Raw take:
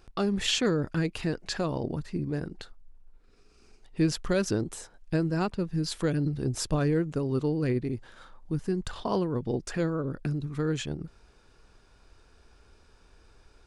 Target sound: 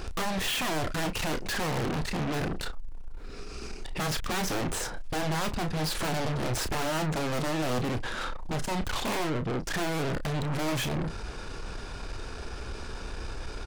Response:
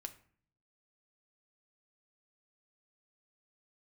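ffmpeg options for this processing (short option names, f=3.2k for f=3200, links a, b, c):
-filter_complex "[0:a]acrossover=split=2900[a][b];[b]acompressor=threshold=-45dB:ratio=4:attack=1:release=60[c];[a][c]amix=inputs=2:normalize=0,highshelf=f=9.3k:g=-5.5,asettb=1/sr,asplit=3[d][e][f];[d]atrim=end=9.294[g];[e]atrim=start=9.29:end=9.71,asetpts=PTS-STARTPTS,afade=t=in:d=0.004:c=qsin,afade=t=out:st=0.416:d=0.004:c=qsin,acompressor=threshold=-36dB:ratio=16[h];[f]atrim=start=9.706[i];[g][h]acrossfade=d=0.004:c1=hsin:c2=qsin[j];[j][i]acrossfade=d=0.004:c1=qsin:c2=hsin,aeval=exprs='0.0708*sin(PI/2*1.78*val(0)/0.0708)':c=same,aeval=exprs='0.075*(cos(1*acos(clip(val(0)/0.075,-1,1)))-cos(1*PI/2))+0.00841*(cos(4*acos(clip(val(0)/0.075,-1,1)))-cos(4*PI/2))+0.0211*(cos(5*acos(clip(val(0)/0.075,-1,1)))-cos(5*PI/2))+0.0335*(cos(6*acos(clip(val(0)/0.075,-1,1)))-cos(6*PI/2))+0.00944*(cos(8*acos(clip(val(0)/0.075,-1,1)))-cos(8*PI/2))':c=same,asoftclip=type=tanh:threshold=-33dB,asplit=2[k][l];[l]adelay=32,volume=-9.5dB[m];[k][m]amix=inputs=2:normalize=0,volume=5dB"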